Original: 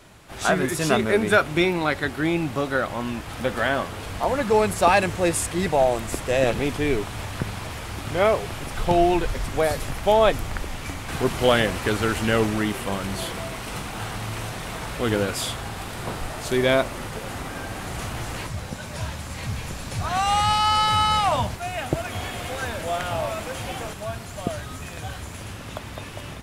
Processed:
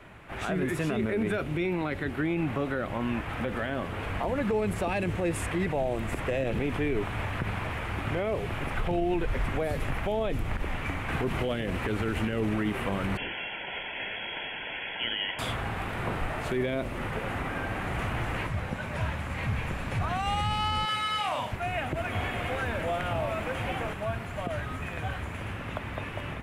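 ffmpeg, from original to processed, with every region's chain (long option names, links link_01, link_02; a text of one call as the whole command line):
ffmpeg -i in.wav -filter_complex "[0:a]asettb=1/sr,asplit=3[link_01][link_02][link_03];[link_01]atrim=end=13.174[link_04];[link_02]atrim=start=13.17:end=15.39,asetpts=PTS-STARTPTS,afade=type=in:duration=0.004:curve=qsin,afade=type=out:start_time=2.216:duration=0.004:curve=qsin,asuperstop=centerf=2200:order=4:qfactor=6.2,lowpass=frequency=2900:width_type=q:width=0.5098,lowpass=frequency=2900:width_type=q:width=0.6013,lowpass=frequency=2900:width_type=q:width=0.9,lowpass=frequency=2900:width_type=q:width=2.563,afreqshift=-3400,tiltshelf=frequency=1100:gain=6[link_05];[link_03]atrim=start=15.386[link_06];[link_04][link_05]acrossfade=duration=0.004:curve1=hsin:curve2=qsin[link_07];[link_07][link_06]acrossfade=duration=0.004:curve1=qsin:curve2=hsin,asettb=1/sr,asplit=3[link_08][link_09][link_10];[link_08]atrim=end=20.854[link_11];[link_09]atrim=start=20.85:end=21.52,asetpts=PTS-STARTPTS,afade=type=in:duration=0.004:curve=qsin,afade=type=out:start_time=0.666:duration=0.004:curve=qsin,highpass=frequency=910:poles=1,asplit=2[link_12][link_13];[link_13]adelay=38,volume=-2.5dB[link_14];[link_12][link_14]amix=inputs=2:normalize=0,atrim=end_sample=29547[link_15];[link_10]atrim=start=21.516[link_16];[link_11][link_15]acrossfade=duration=0.004:curve1=hsin:curve2=qsin[link_17];[link_17][link_16]acrossfade=duration=0.004:curve1=qsin:curve2=hsin,highshelf=frequency=3400:width_type=q:width=1.5:gain=-12.5,acrossover=split=490|3000[link_18][link_19][link_20];[link_19]acompressor=threshold=-31dB:ratio=6[link_21];[link_18][link_21][link_20]amix=inputs=3:normalize=0,alimiter=limit=-20dB:level=0:latency=1:release=47" out.wav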